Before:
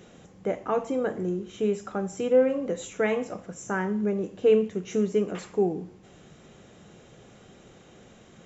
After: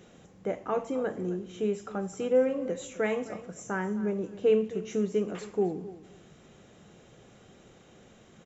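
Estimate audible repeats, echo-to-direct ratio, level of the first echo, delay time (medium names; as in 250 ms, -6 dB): 2, -16.5 dB, -16.5 dB, 263 ms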